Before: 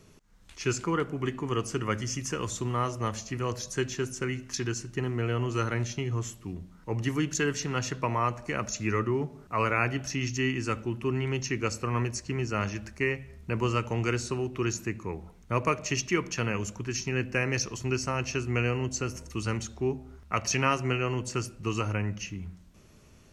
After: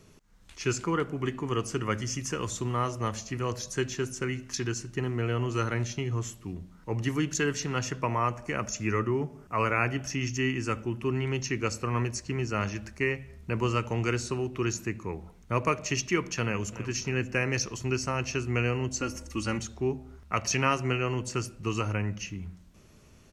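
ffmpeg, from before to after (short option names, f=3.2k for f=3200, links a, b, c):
-filter_complex "[0:a]asettb=1/sr,asplit=3[a][b][c];[a]atrim=end=7.844[d];[b]atrim=start=7.84:end=10.99,asetpts=PTS-STARTPTS,afade=t=in:d=0.004:c=qsin,afade=t=out:st=3.146:d=0.004:c=qsin,equalizer=f=4k:t=o:w=0.22:g=-9.5[e];[c]atrim=start=10.986[f];[d][e]acrossfade=d=0.004:c1=hsin:c2=qsin[g];[g][f]acrossfade=d=0.004:c1=qsin:c2=hsin,asplit=2[h][i];[i]afade=t=in:st=16.43:d=0.01,afade=t=out:st=16.84:d=0.01,aecho=0:1:290|580|870|1160:0.237137|0.106712|0.0480203|0.0216091[j];[h][j]amix=inputs=2:normalize=0,asettb=1/sr,asplit=3[k][l][m];[k]atrim=end=19.004[n];[l]atrim=start=19:end=19.59,asetpts=PTS-STARTPTS,afade=t=in:d=0.004:c=qsin,afade=t=out:st=0.586:d=0.004:c=qsin,aecho=1:1:3.6:0.65,atrim=end_sample=26019[o];[m]atrim=start=19.586[p];[n][o]acrossfade=d=0.004:c1=hsin:c2=qsin[q];[q][p]acrossfade=d=0.004:c1=qsin:c2=hsin"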